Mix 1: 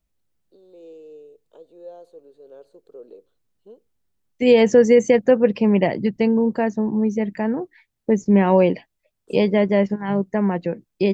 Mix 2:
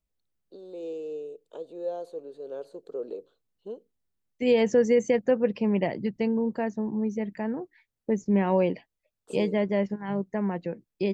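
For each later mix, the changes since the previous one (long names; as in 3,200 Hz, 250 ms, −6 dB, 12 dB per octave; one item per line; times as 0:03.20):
first voice +7.0 dB
second voice −8.0 dB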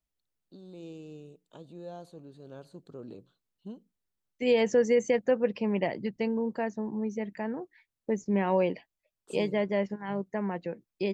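first voice: remove high-pass with resonance 460 Hz, resonance Q 4.3
master: add low-shelf EQ 380 Hz −6 dB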